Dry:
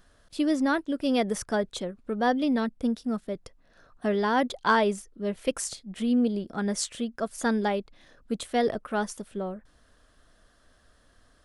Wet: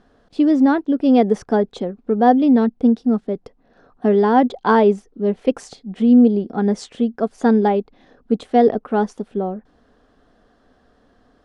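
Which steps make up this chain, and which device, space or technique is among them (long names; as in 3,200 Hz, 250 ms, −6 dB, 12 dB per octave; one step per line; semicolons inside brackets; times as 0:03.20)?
inside a cardboard box (low-pass filter 5,100 Hz 12 dB per octave; hollow resonant body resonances 250/420/740 Hz, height 13 dB, ringing for 20 ms)
level −1 dB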